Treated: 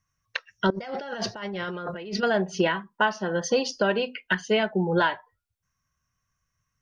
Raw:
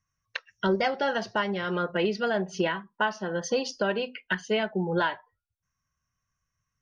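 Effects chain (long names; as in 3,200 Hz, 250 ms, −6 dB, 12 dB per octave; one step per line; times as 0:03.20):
0:00.70–0:02.23: compressor whose output falls as the input rises −37 dBFS, ratio −1
level +3.5 dB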